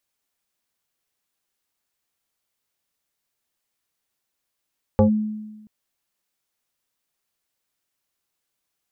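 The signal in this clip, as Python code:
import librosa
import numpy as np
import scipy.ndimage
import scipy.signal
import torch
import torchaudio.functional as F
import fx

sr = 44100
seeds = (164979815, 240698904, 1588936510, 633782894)

y = fx.fm2(sr, length_s=0.68, level_db=-10, carrier_hz=214.0, ratio=1.46, index=1.6, index_s=0.11, decay_s=1.16, shape='linear')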